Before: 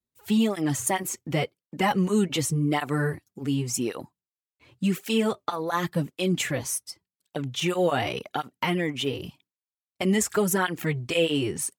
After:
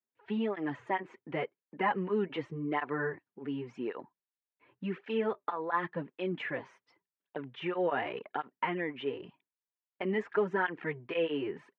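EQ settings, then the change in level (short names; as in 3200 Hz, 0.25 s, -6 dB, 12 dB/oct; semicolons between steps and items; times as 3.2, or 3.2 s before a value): speaker cabinet 220–2600 Hz, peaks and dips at 420 Hz +5 dB, 1000 Hz +8 dB, 1700 Hz +6 dB; notch 1100 Hz, Q 16; -8.5 dB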